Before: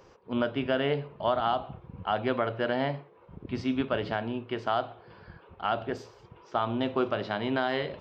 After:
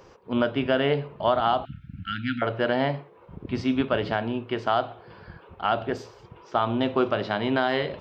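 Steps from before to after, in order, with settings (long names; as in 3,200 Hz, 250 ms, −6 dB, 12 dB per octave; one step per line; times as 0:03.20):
0:01.65–0:02.42: linear-phase brick-wall band-stop 310–1,300 Hz
level +4.5 dB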